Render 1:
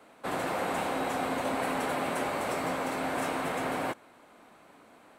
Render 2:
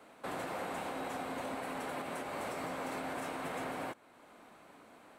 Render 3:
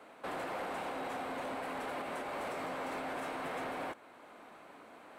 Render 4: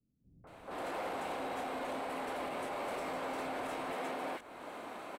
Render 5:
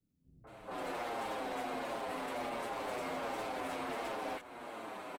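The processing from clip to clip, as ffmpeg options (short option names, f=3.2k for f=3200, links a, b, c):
-af "alimiter=level_in=4.5dB:limit=-24dB:level=0:latency=1:release=390,volume=-4.5dB,volume=-1.5dB"
-af "bass=f=250:g=-6,treble=f=4k:g=-6,areverse,acompressor=mode=upward:threshold=-53dB:ratio=2.5,areverse,asoftclip=type=tanh:threshold=-36dB,volume=3dB"
-filter_complex "[0:a]alimiter=level_in=18.5dB:limit=-24dB:level=0:latency=1:release=290,volume=-18.5dB,dynaudnorm=f=190:g=3:m=9dB,acrossover=split=150|1600[a][b][c];[b]adelay=440[d];[c]adelay=470[e];[a][d][e]amix=inputs=3:normalize=0,volume=1dB"
-filter_complex "[0:a]aeval=exprs='0.02*(abs(mod(val(0)/0.02+3,4)-2)-1)':c=same,asplit=2[a][b];[b]adelay=7.4,afreqshift=-1.4[c];[a][c]amix=inputs=2:normalize=1,volume=3.5dB"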